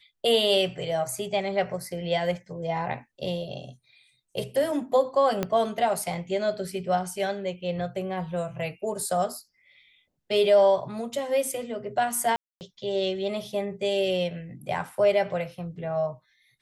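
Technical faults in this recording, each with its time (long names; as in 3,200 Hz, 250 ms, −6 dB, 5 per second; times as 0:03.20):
0:05.43: click −12 dBFS
0:12.36–0:12.61: drop-out 249 ms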